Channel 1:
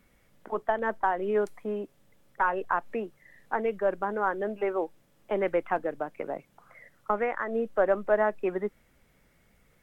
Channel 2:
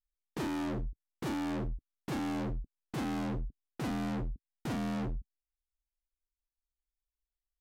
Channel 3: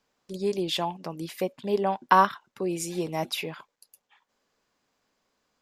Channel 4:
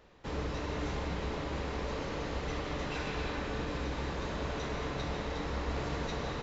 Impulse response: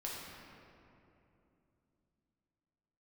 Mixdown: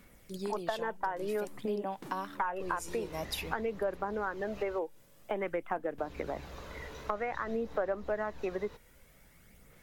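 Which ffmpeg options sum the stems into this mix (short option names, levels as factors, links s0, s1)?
-filter_complex "[0:a]volume=1.26[s0];[1:a]highpass=f=150:w=0.5412,highpass=f=150:w=1.3066,acompressor=threshold=0.00631:ratio=6,adelay=800,volume=0.631[s1];[2:a]dynaudnorm=f=120:g=3:m=4.22,volume=0.112,asplit=2[s2][s3];[3:a]adelay=2350,volume=0.282,asplit=3[s4][s5][s6];[s4]atrim=end=4.79,asetpts=PTS-STARTPTS,afade=t=out:st=4.786:d=0.004:c=hsin[s7];[s5]atrim=start=4.79:end=5.98,asetpts=PTS-STARTPTS,volume=0[s8];[s6]atrim=start=5.98,asetpts=PTS-STARTPTS,afade=t=in:d=0.004:c=hsin[s9];[s7][s8][s9]concat=n=3:v=0:a=1[s10];[s3]apad=whole_len=370773[s11];[s1][s11]sidechaingate=range=0.0224:threshold=0.00112:ratio=16:detection=peak[s12];[s0][s12][s2][s10]amix=inputs=4:normalize=0,highshelf=f=6100:g=7.5,aphaser=in_gain=1:out_gain=1:delay=2.1:decay=0.33:speed=0.51:type=sinusoidal,acompressor=threshold=0.0251:ratio=4"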